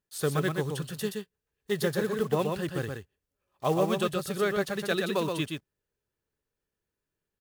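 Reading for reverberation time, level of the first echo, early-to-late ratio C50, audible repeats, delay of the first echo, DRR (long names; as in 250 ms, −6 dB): no reverb audible, −4.5 dB, no reverb audible, 1, 124 ms, no reverb audible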